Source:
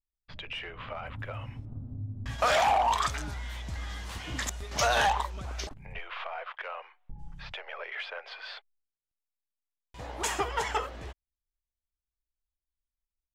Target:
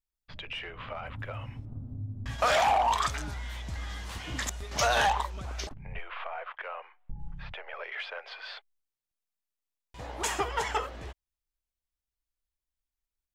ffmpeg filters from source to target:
-filter_complex "[0:a]asettb=1/sr,asplit=3[a][b][c];[a]atrim=end=5.724[d];[b]atrim=start=5.72:end=7.74,asetpts=PTS-STARTPTS,afade=t=in:d=0.004:c=qsin,afade=t=out:st=2.016:d=0.004:c=qsin,bass=f=250:g=4,treble=f=4k:g=-14[e];[c]atrim=start=7.736[f];[d][e]acrossfade=d=0.004:c1=hsin:c2=qsin[g];[g][f]acrossfade=d=0.004:c1=qsin:c2=hsin"

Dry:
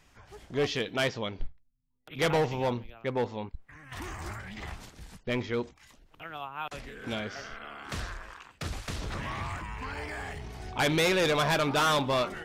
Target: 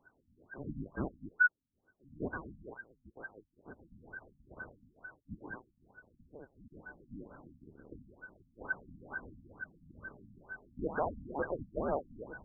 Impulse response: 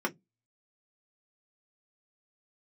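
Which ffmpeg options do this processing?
-filter_complex "[0:a]afftfilt=real='real(if(lt(b,272),68*(eq(floor(b/68),0)*2+eq(floor(b/68),1)*0+eq(floor(b/68),2)*3+eq(floor(b/68),3)*1)+mod(b,68),b),0)':imag='imag(if(lt(b,272),68*(eq(floor(b/68),0)*2+eq(floor(b/68),1)*0+eq(floor(b/68),2)*3+eq(floor(b/68),3)*1)+mod(b,68),b),0)':win_size=2048:overlap=0.75,asplit=2[a][b];[b]adelay=1458,volume=-14dB,highshelf=f=4k:g=-32.8[c];[a][c]amix=inputs=2:normalize=0,afftfilt=real='re*lt(b*sr/1024,260*pow(1600/260,0.5+0.5*sin(2*PI*2.2*pts/sr)))':imag='im*lt(b*sr/1024,260*pow(1600/260,0.5+0.5*sin(2*PI*2.2*pts/sr)))':win_size=1024:overlap=0.75,volume=2dB"

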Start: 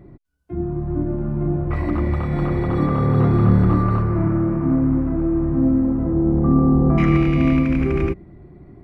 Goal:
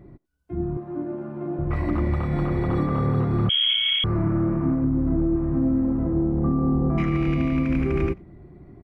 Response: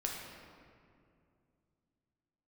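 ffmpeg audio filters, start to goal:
-filter_complex "[0:a]asettb=1/sr,asplit=3[a][b][c];[a]atrim=end=0.774[d];[b]atrim=start=0.77:end=1.59,asetpts=PTS-STARTPTS,afade=t=in:d=0.004:c=qsin,afade=t=out:st=0.816:d=0.004:c=qsin,highpass=300[e];[c]atrim=start=1.586[f];[d][e]acrossfade=d=0.004:c1=hsin:c2=qsin[g];[g][f]acrossfade=d=0.004:c1=qsin:c2=hsin,asettb=1/sr,asplit=3[h][i][j];[h]atrim=end=4.844[k];[i]atrim=start=4.84:end=5.36,asetpts=PTS-STARTPTS,afade=t=in:d=0.004:c=qsin,afade=t=out:st=0.516:d=0.004:c=qsin,tiltshelf=f=840:g=4.5[l];[j]atrim=start=5.356[m];[k][l]acrossfade=d=0.004:c1=hsin:c2=qsin[n];[n][m]acrossfade=d=0.004:c1=qsin:c2=hsin,alimiter=limit=-11dB:level=0:latency=1:release=225,asplit=2[o][p];[p]adelay=90,highpass=300,lowpass=3.4k,asoftclip=type=hard:threshold=-22dB,volume=-27dB[q];[o][q]amix=inputs=2:normalize=0,asettb=1/sr,asplit=3[r][s][t];[r]atrim=end=3.494[u];[s]atrim=start=3.49:end=4.04,asetpts=PTS-STARTPTS,afade=t=in:d=0.004:c=qsin,afade=t=out:st=0.546:d=0.004:c=qsin,lowpass=f=2.9k:t=q:w=0.5098,lowpass=f=2.9k:t=q:w=0.6013,lowpass=f=2.9k:t=q:w=0.9,lowpass=f=2.9k:t=q:w=2.563,afreqshift=-3400[v];[t]atrim=start=4.036[w];[u][v]acrossfade=d=0.004:c1=hsin:c2=qsin[x];[x][w]acrossfade=d=0.004:c1=qsin:c2=hsin,volume=-2.5dB"

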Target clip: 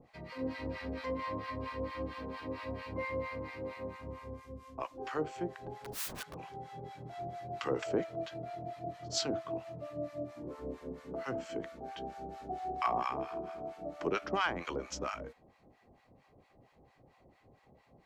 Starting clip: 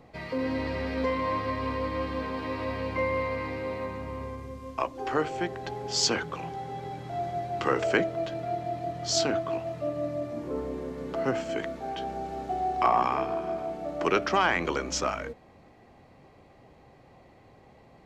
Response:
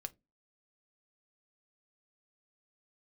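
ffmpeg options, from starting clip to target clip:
-filter_complex "[0:a]asettb=1/sr,asplit=3[a][b][c];[a]atrim=end=5.794[d];[b]atrim=start=5.79:end=6.37,asetpts=PTS-STARTPTS,afade=t=in:d=0.004:c=qsin,afade=t=out:st=0.576:d=0.004:c=qsin,aeval=exprs='(mod(23.7*val(0)+1,2)-1)/23.7':c=same[e];[c]atrim=start=6.366[f];[d][e]acrossfade=d=0.004:c1=hsin:c2=qsin[g];[g][f]acrossfade=d=0.004:c1=qsin:c2=hsin,acrossover=split=830[h][i];[h]aeval=exprs='val(0)*(1-1/2+1/2*cos(2*PI*4.4*n/s))':c=same[j];[i]aeval=exprs='val(0)*(1-1/2-1/2*cos(2*PI*4.4*n/s))':c=same[k];[j][k]amix=inputs=2:normalize=0,volume=-4dB"

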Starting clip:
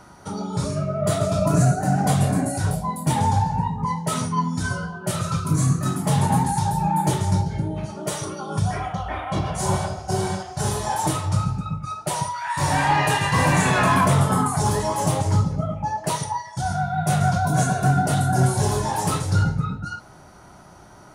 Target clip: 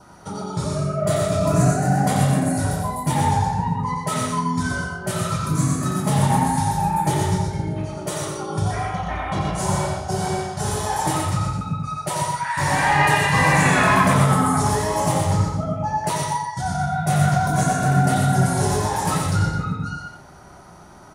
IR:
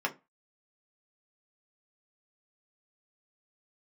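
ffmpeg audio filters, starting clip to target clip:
-filter_complex "[0:a]aecho=1:1:88:0.562,asplit=2[a][b];[1:a]atrim=start_sample=2205,lowpass=2k[c];[b][c]afir=irnorm=-1:irlink=0,volume=-23.5dB[d];[a][d]amix=inputs=2:normalize=0,adynamicequalizer=threshold=0.0112:dfrequency=2000:dqfactor=3.1:tfrequency=2000:tqfactor=3.1:attack=5:release=100:ratio=0.375:range=3:mode=boostabove:tftype=bell,asplit=2[e][f];[f]aecho=0:1:123:0.531[g];[e][g]amix=inputs=2:normalize=0,volume=-1dB"

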